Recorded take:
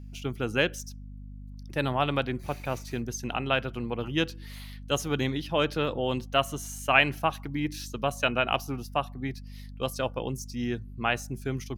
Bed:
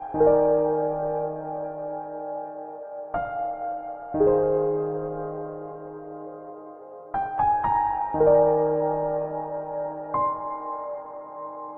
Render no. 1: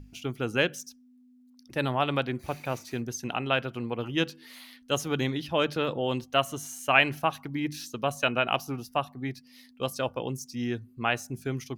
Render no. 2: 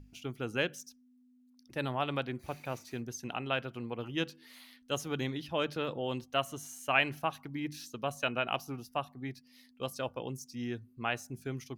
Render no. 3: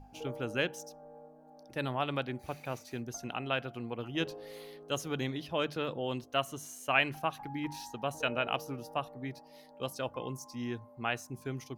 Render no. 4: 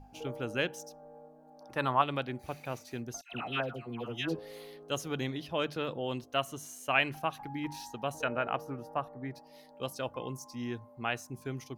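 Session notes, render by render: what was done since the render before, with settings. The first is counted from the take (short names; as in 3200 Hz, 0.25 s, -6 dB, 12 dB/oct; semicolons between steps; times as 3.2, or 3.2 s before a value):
notches 50/100/150/200 Hz
gain -6.5 dB
add bed -25.5 dB
1.61–2.02 bell 1100 Hz +12.5 dB 1 oct; 3.21–4.39 dispersion lows, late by 0.115 s, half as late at 1200 Hz; 8.24–9.36 resonant high shelf 2300 Hz -8.5 dB, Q 1.5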